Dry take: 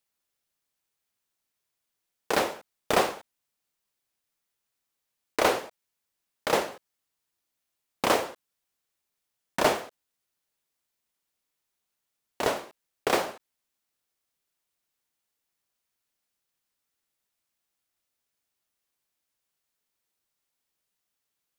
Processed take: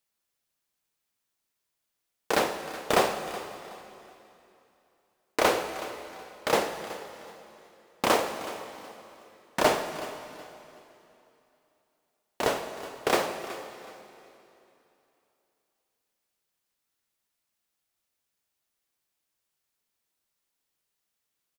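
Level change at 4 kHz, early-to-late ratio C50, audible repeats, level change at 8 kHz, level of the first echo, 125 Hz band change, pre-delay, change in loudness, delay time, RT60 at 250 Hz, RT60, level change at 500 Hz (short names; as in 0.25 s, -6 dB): +0.5 dB, 8.0 dB, 2, +0.5 dB, -16.5 dB, +1.0 dB, 5 ms, -1.0 dB, 0.372 s, 3.0 s, 2.9 s, +1.0 dB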